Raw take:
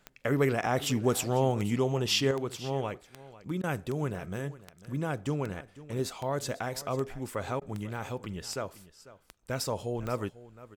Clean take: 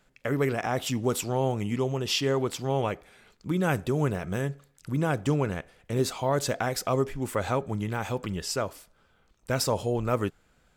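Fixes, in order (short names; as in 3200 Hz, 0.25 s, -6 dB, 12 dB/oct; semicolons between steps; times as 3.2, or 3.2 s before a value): de-click; interpolate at 3.62/7.6, 14 ms; inverse comb 0.496 s -17.5 dB; gain 0 dB, from 2.31 s +6 dB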